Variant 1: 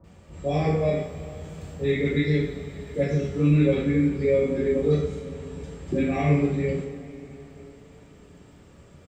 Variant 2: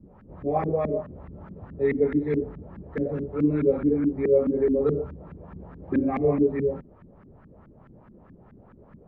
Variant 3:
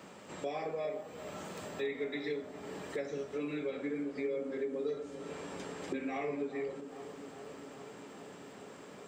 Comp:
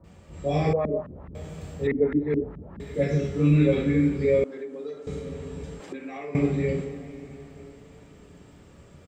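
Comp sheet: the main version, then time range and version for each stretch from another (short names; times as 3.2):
1
0.73–1.35 from 2
1.87–2.8 from 2
4.44–5.07 from 3
5.8–6.35 from 3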